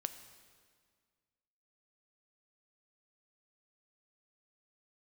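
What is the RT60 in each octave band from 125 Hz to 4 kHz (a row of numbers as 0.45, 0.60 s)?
2.1, 2.1, 1.9, 1.8, 1.7, 1.6 s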